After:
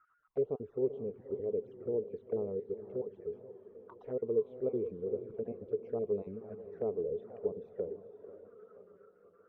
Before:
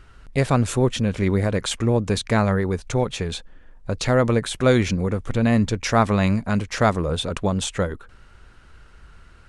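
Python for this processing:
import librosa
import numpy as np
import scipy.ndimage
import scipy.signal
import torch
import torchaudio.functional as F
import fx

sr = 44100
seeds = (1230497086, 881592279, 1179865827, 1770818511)

y = fx.spec_dropout(x, sr, seeds[0], share_pct=31)
y = fx.auto_wah(y, sr, base_hz=430.0, top_hz=1400.0, q=13.0, full_db=-25.5, direction='down')
y = scipy.signal.sosfilt(scipy.signal.butter(2, 2500.0, 'lowpass', fs=sr, output='sos'), y)
y = fx.echo_diffused(y, sr, ms=480, feedback_pct=45, wet_db=-11.5)
y = fx.env_flanger(y, sr, rest_ms=6.8, full_db=-33.0)
y = fx.low_shelf(y, sr, hz=350.0, db=7.0)
y = fx.echo_warbled(y, sr, ms=483, feedback_pct=56, rate_hz=2.8, cents=158, wet_db=-17.5)
y = y * librosa.db_to_amplitude(-2.0)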